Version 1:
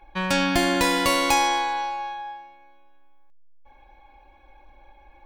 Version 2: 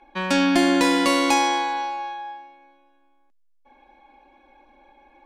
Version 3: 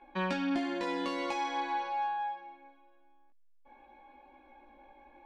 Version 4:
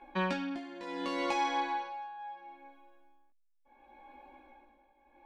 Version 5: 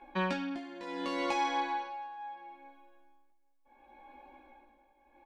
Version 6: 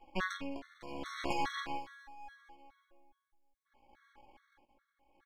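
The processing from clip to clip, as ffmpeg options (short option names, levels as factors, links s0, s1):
-af "lowpass=10000,lowshelf=f=170:t=q:w=3:g=-12.5"
-af "acompressor=threshold=0.0447:ratio=8,flanger=delay=15.5:depth=5:speed=0.47,adynamicsmooth=sensitivity=1:basefreq=4200"
-af "tremolo=f=0.71:d=0.81,volume=1.41"
-filter_complex "[0:a]asplit=2[s0][s1];[s1]adelay=816.3,volume=0.0355,highshelf=f=4000:g=-18.4[s2];[s0][s2]amix=inputs=2:normalize=0"
-af "aeval=exprs='max(val(0),0)':c=same,aeval=exprs='0.106*(cos(1*acos(clip(val(0)/0.106,-1,1)))-cos(1*PI/2))+0.00596*(cos(7*acos(clip(val(0)/0.106,-1,1)))-cos(7*PI/2))':c=same,afftfilt=real='re*gt(sin(2*PI*2.4*pts/sr)*(1-2*mod(floor(b*sr/1024/1100),2)),0)':imag='im*gt(sin(2*PI*2.4*pts/sr)*(1-2*mod(floor(b*sr/1024/1100),2)),0)':win_size=1024:overlap=0.75,volume=1.41"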